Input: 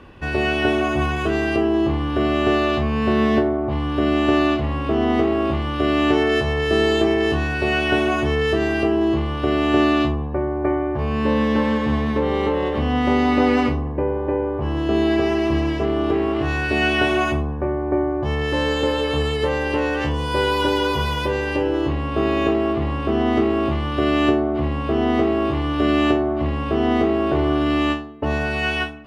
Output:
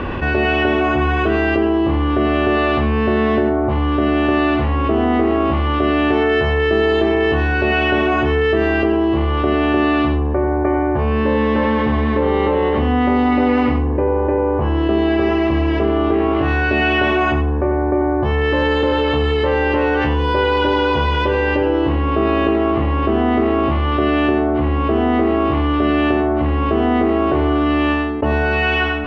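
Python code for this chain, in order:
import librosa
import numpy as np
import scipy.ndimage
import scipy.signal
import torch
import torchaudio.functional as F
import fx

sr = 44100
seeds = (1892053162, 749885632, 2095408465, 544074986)

y = scipy.signal.sosfilt(scipy.signal.butter(2, 2800.0, 'lowpass', fs=sr, output='sos'), x)
y = fx.peak_eq(y, sr, hz=150.0, db=-4.5, octaves=0.44)
y = y + 10.0 ** (-9.5 / 20.0) * np.pad(y, (int(93 * sr / 1000.0), 0))[:len(y)]
y = fx.env_flatten(y, sr, amount_pct=70)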